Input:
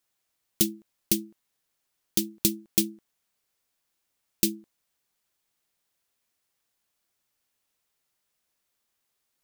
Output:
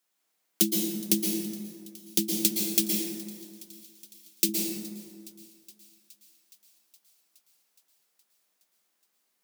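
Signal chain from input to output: steep high-pass 160 Hz 96 dB/octave; 2.28–4.49 s: bass shelf 220 Hz -10 dB; feedback echo behind a high-pass 418 ms, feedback 73%, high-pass 2.2 kHz, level -21 dB; plate-style reverb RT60 2.1 s, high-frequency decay 0.4×, pre-delay 105 ms, DRR -1 dB

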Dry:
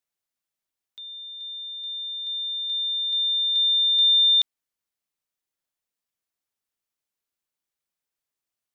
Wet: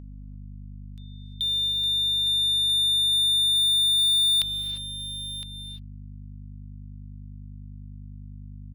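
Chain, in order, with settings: gate with hold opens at -33 dBFS; peaking EQ 3.5 kHz -6.5 dB 0.37 oct; in parallel at 0 dB: compression, threshold -35 dBFS, peak gain reduction 11.5 dB; on the sum: waveshaping leveller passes 3; hum 50 Hz, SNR 16 dB; on a send: delay 1012 ms -16 dB; on the sum: gated-style reverb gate 370 ms rising, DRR 10 dB; saturation -17.5 dBFS, distortion -20 dB; tape noise reduction on one side only encoder only

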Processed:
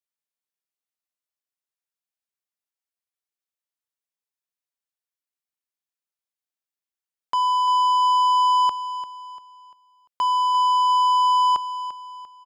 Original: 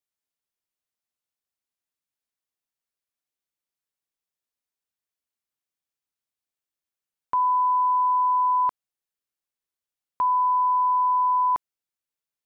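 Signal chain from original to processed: high-pass 410 Hz 6 dB/octave; waveshaping leveller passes 2; on a send: feedback delay 345 ms, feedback 38%, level -13 dB

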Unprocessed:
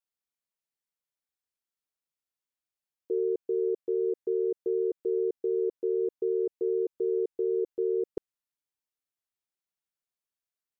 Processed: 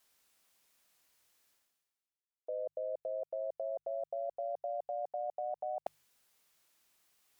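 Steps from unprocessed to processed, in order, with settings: gliding tape speed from 114% -> 178%; level held to a coarse grid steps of 23 dB; bass shelf 390 Hz -4.5 dB; reverse; upward compressor, threshold -57 dBFS; reverse; de-hum 50.3 Hz, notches 3; trim +10 dB

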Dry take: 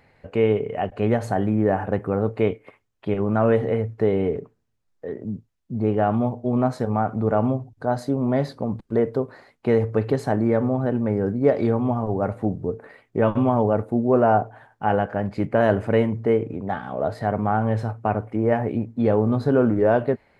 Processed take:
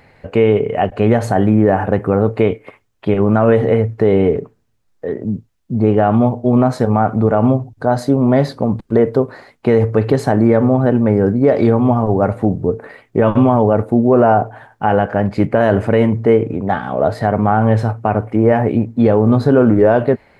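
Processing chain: loudness maximiser +10.5 dB; trim -1 dB

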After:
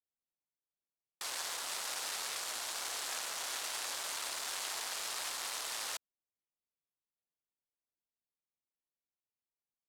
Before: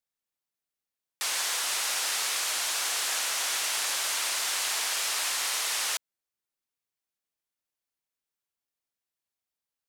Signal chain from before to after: local Wiener filter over 25 samples; trim -5.5 dB

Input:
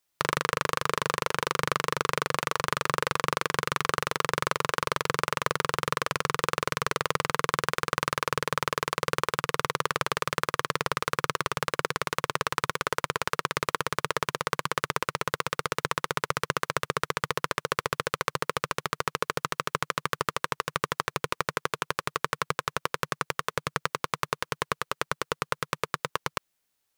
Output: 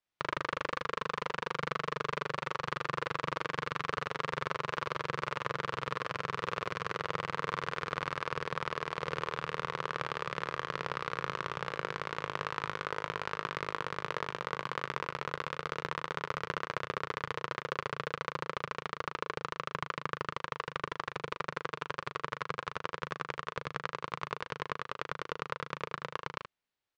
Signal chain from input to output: low-pass 3.7 kHz 12 dB/octave; early reflections 37 ms -7.5 dB, 77 ms -9 dB; trim -8 dB

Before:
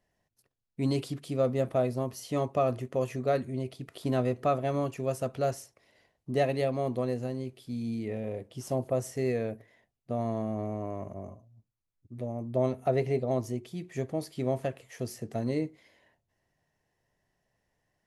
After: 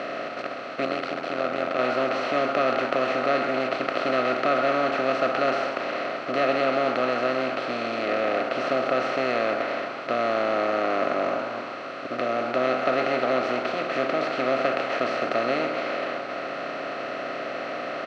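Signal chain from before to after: spectral levelling over time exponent 0.2; on a send: frequency-shifting echo 131 ms, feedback 55%, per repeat +130 Hz, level -11 dB; 0.85–1.79 s: on the sum: AM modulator 86 Hz, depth 65%; cabinet simulation 330–4400 Hz, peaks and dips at 440 Hz -8 dB, 890 Hz -10 dB, 1.4 kHz +8 dB, 2.4 kHz +6 dB

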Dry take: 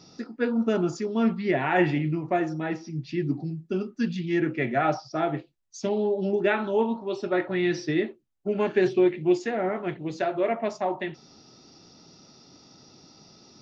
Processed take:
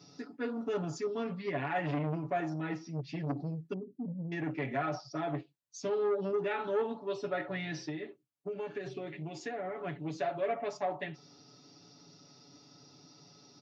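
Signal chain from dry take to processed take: 3.73–4.32 s: Gaussian low-pass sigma 21 samples; peak limiter -18 dBFS, peak gain reduction 8.5 dB; high-pass 77 Hz 24 dB/octave; comb 7 ms, depth 95%; 7.74–9.81 s: compression 6:1, threshold -27 dBFS, peak gain reduction 8.5 dB; transformer saturation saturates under 590 Hz; trim -8 dB

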